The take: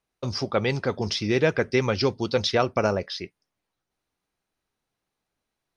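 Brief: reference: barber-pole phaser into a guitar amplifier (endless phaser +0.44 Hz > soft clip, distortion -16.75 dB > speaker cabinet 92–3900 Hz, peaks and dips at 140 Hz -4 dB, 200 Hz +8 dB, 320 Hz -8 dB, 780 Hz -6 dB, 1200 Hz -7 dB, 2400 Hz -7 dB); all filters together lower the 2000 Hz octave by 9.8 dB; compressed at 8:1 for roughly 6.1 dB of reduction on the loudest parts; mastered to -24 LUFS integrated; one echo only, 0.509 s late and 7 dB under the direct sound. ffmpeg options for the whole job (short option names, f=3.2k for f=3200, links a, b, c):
-filter_complex "[0:a]equalizer=f=2k:t=o:g=-9,acompressor=threshold=-24dB:ratio=8,aecho=1:1:509:0.447,asplit=2[a][b];[b]afreqshift=0.44[c];[a][c]amix=inputs=2:normalize=1,asoftclip=threshold=-23.5dB,highpass=92,equalizer=f=140:t=q:w=4:g=-4,equalizer=f=200:t=q:w=4:g=8,equalizer=f=320:t=q:w=4:g=-8,equalizer=f=780:t=q:w=4:g=-6,equalizer=f=1.2k:t=q:w=4:g=-7,equalizer=f=2.4k:t=q:w=4:g=-7,lowpass=f=3.9k:w=0.5412,lowpass=f=3.9k:w=1.3066,volume=11.5dB"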